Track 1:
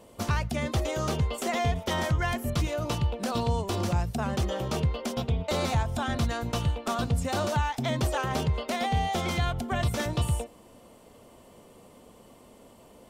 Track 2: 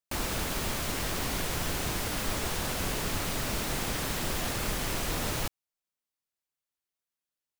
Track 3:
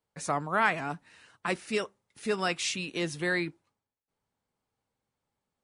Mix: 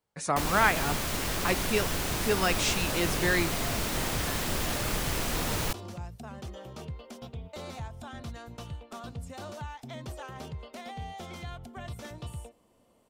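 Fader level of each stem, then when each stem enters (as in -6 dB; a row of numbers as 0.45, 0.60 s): -13.0, +1.0, +2.0 dB; 2.05, 0.25, 0.00 s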